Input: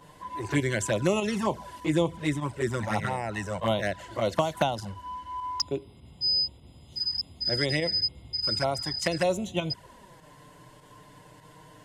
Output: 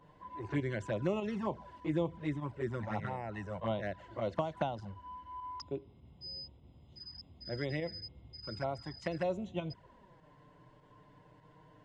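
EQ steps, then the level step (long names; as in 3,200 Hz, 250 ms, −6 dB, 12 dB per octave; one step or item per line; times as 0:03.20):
head-to-tape spacing loss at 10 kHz 26 dB
−7.0 dB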